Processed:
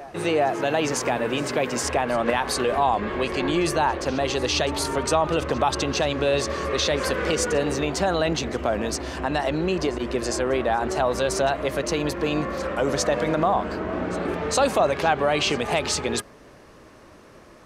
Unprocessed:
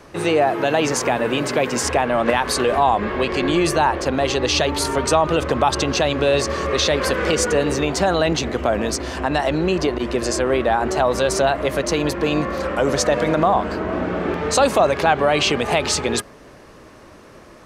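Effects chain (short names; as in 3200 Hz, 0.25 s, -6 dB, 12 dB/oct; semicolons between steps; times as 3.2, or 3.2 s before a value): reverse echo 0.406 s -19 dB; gain -4.5 dB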